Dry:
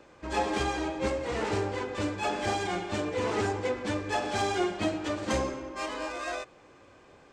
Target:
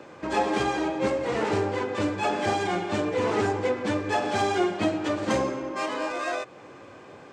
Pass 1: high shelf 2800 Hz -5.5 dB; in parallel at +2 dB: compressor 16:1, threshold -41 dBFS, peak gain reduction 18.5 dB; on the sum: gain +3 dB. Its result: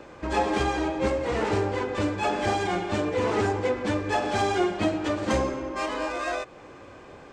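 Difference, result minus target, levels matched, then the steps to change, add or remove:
125 Hz band +2.5 dB
add first: HPF 98 Hz 24 dB/oct

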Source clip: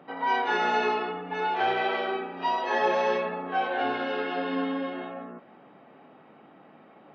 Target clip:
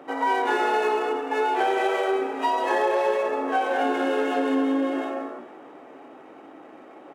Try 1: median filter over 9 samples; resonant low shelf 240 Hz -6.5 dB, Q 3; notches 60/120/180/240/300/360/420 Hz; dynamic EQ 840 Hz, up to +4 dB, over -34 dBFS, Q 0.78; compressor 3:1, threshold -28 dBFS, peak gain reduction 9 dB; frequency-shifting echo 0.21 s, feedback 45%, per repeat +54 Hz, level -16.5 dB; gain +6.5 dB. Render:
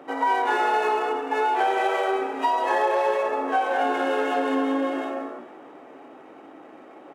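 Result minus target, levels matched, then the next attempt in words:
250 Hz band -2.5 dB
median filter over 9 samples; resonant low shelf 240 Hz -6.5 dB, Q 3; notches 60/120/180/240/300/360/420 Hz; dynamic EQ 310 Hz, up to +4 dB, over -34 dBFS, Q 0.78; compressor 3:1, threshold -28 dBFS, peak gain reduction 8 dB; frequency-shifting echo 0.21 s, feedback 45%, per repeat +54 Hz, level -16.5 dB; gain +6.5 dB

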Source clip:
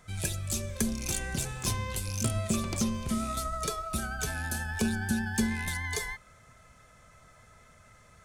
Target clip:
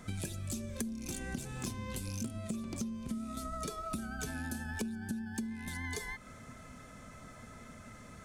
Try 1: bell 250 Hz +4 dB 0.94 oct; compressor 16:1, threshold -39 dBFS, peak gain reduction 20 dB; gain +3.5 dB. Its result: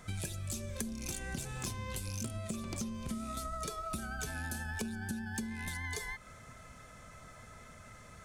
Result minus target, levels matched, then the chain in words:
250 Hz band -3.0 dB
bell 250 Hz +13.5 dB 0.94 oct; compressor 16:1, threshold -39 dBFS, peak gain reduction 26.5 dB; gain +3.5 dB

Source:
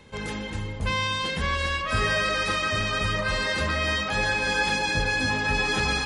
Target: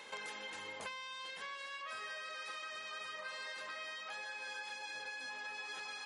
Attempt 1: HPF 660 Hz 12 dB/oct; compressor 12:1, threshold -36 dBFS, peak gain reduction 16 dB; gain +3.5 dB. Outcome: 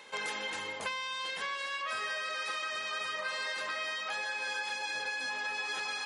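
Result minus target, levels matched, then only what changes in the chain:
compressor: peak gain reduction -9 dB
change: compressor 12:1, threshold -46 dBFS, peak gain reduction 25.5 dB

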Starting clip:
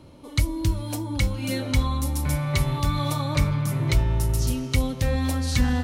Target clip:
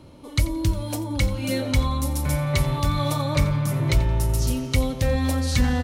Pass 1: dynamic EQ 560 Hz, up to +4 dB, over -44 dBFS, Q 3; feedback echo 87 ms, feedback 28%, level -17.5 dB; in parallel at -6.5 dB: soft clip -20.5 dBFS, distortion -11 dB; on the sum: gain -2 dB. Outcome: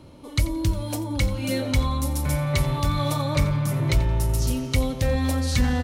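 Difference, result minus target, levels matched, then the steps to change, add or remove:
soft clip: distortion +9 dB
change: soft clip -13 dBFS, distortion -20 dB

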